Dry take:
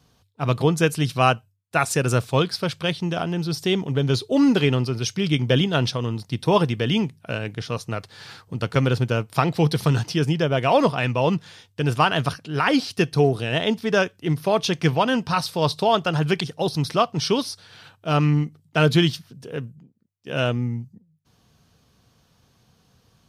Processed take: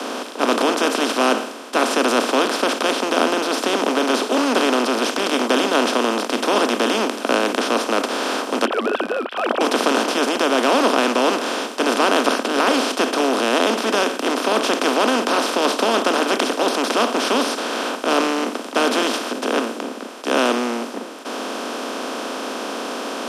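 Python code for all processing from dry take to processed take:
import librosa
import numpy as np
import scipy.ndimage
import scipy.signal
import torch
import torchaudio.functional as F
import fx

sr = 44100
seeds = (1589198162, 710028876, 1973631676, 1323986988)

y = fx.chain(x, sr, fx.sine_speech(),
    fx.fixed_phaser(hz=1400.0, stages=8), at=(8.65, 9.61))
y = fx.bin_compress(y, sr, power=0.2)
y = scipy.signal.sosfilt(scipy.signal.butter(12, 220.0, 'highpass', fs=sr, output='sos'), y)
y = fx.band_widen(y, sr, depth_pct=40)
y = y * 10.0 ** (-7.0 / 20.0)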